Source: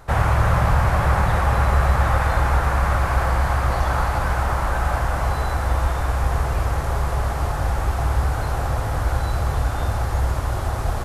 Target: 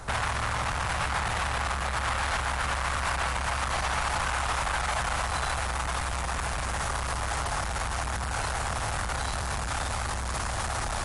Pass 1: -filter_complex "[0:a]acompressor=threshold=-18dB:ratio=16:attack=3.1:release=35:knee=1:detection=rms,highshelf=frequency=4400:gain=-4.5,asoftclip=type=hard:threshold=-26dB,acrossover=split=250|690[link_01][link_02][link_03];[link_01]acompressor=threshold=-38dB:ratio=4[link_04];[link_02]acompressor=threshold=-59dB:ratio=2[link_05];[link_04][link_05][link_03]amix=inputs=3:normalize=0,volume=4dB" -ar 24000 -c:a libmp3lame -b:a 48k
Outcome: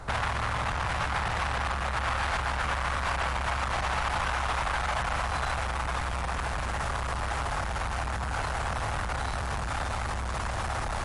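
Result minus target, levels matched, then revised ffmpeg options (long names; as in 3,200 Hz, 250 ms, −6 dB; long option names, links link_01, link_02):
8,000 Hz band −6.5 dB
-filter_complex "[0:a]acompressor=threshold=-18dB:ratio=16:attack=3.1:release=35:knee=1:detection=rms,highshelf=frequency=4400:gain=6.5,asoftclip=type=hard:threshold=-26dB,acrossover=split=250|690[link_01][link_02][link_03];[link_01]acompressor=threshold=-38dB:ratio=4[link_04];[link_02]acompressor=threshold=-59dB:ratio=2[link_05];[link_04][link_05][link_03]amix=inputs=3:normalize=0,volume=4dB" -ar 24000 -c:a libmp3lame -b:a 48k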